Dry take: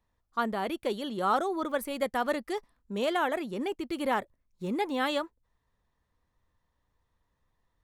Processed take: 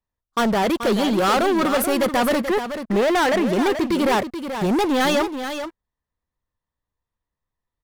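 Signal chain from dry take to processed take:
0:02.41–0:03.47: high shelf with overshoot 2,900 Hz −12 dB, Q 1.5
leveller curve on the samples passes 5
on a send: single-tap delay 432 ms −9 dB

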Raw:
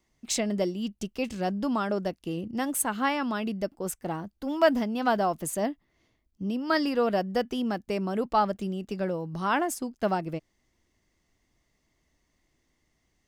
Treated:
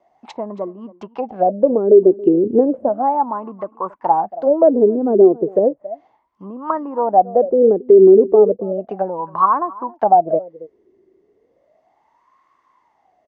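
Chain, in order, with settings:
treble cut that deepens with the level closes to 470 Hz, closed at −26 dBFS
0:02.45–0:02.89: low-shelf EQ 330 Hz +7.5 dB
single-tap delay 276 ms −21 dB
LFO wah 0.34 Hz 380–1,100 Hz, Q 14
boost into a limiter +34.5 dB
level −1 dB

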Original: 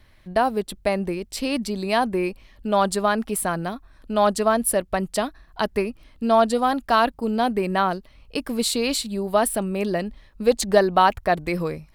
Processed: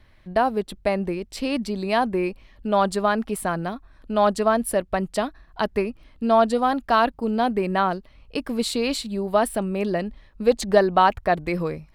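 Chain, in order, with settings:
high-shelf EQ 5,800 Hz −9.5 dB

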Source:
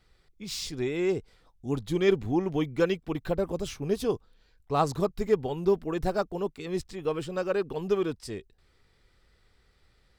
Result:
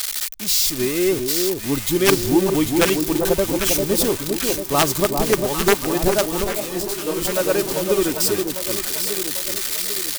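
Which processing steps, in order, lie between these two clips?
spike at every zero crossing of −20 dBFS
comb filter 3.3 ms, depth 33%
wrap-around overflow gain 14.5 dB
on a send: delay that swaps between a low-pass and a high-pass 398 ms, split 1,000 Hz, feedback 71%, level −4 dB
0:06.44–0:07.25: on the sum: micro pitch shift up and down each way 44 cents
level +7 dB

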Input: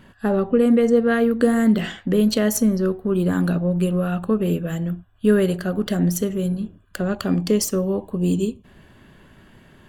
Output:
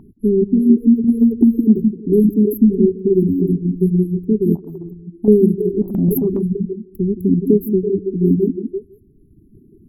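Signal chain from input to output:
linear-phase brick-wall band-stop 430–11,000 Hz
echo through a band-pass that steps 164 ms, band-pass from 250 Hz, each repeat 0.7 octaves, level −2.5 dB
0:04.55–0:05.28: downward compressor 4 to 1, threshold −26 dBFS, peak gain reduction 9 dB
parametric band 890 Hz +14.5 dB 1.4 octaves
reverb reduction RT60 1.4 s
0:05.82–0:06.41: transient designer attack −7 dB, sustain +10 dB
high-shelf EQ 6,600 Hz −8 dB
0:01.04–0:01.79: multiband upward and downward compressor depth 70%
level +5 dB

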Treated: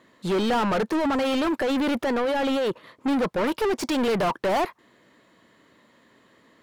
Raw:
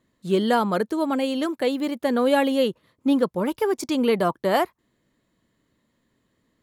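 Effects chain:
0:00.95–0:02.68: compressor whose output falls as the input rises −26 dBFS, ratio −1
0:03.81–0:04.35: high-shelf EQ 4,200 Hz +6.5 dB
mid-hump overdrive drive 33 dB, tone 2,100 Hz, clips at −8 dBFS
level −8 dB

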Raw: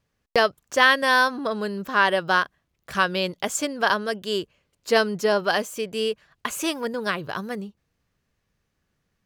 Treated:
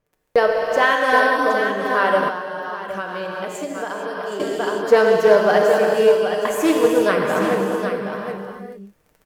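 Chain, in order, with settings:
surface crackle 11 per second −40 dBFS
graphic EQ with 10 bands 125 Hz −4 dB, 500 Hz +6 dB, 4,000 Hz −5 dB, 16,000 Hz +8 dB
speech leveller within 5 dB 2 s
comb filter 6.6 ms, depth 35%
single-tap delay 768 ms −8 dB
reverb whose tail is shaped and stops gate 470 ms flat, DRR −0.5 dB
0:02.28–0:04.40: downward compressor, threshold −24 dBFS, peak gain reduction 12 dB
high-shelf EQ 3,600 Hz −9 dB
highs frequency-modulated by the lows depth 0.1 ms

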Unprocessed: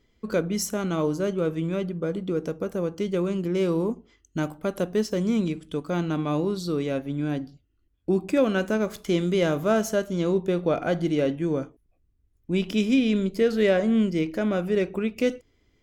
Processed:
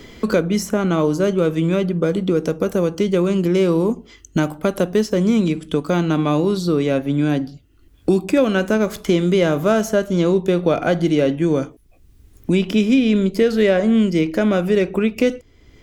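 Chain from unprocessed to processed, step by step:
multiband upward and downward compressor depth 70%
level +7 dB

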